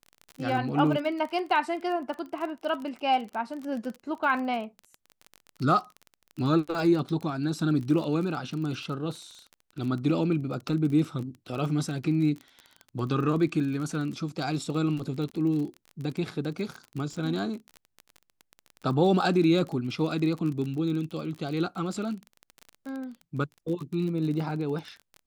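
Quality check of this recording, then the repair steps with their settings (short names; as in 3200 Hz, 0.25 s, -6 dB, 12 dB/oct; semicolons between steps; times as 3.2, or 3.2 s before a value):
crackle 30/s -33 dBFS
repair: de-click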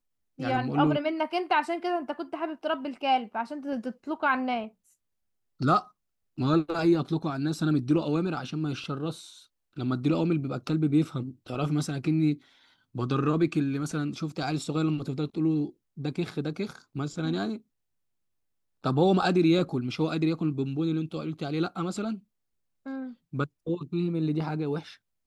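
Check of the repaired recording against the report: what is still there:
none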